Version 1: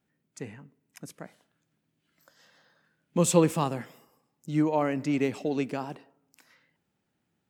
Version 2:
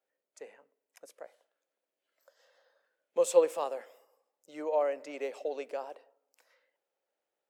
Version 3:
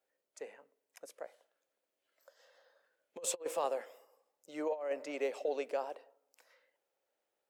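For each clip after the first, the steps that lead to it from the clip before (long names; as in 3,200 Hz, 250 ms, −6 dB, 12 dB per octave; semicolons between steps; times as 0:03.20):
four-pole ladder high-pass 480 Hz, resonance 65%; level +2 dB
compressor whose output falls as the input rises −32 dBFS, ratio −0.5; level −2.5 dB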